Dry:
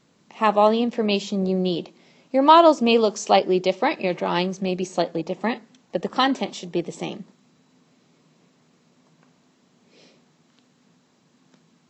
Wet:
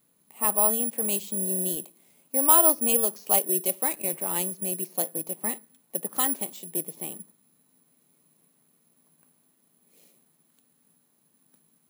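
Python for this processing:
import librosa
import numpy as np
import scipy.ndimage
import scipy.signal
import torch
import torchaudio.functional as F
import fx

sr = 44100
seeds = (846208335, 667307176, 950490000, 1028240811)

y = (np.kron(scipy.signal.resample_poly(x, 1, 4), np.eye(4)[0]) * 4)[:len(x)]
y = F.gain(torch.from_numpy(y), -11.5).numpy()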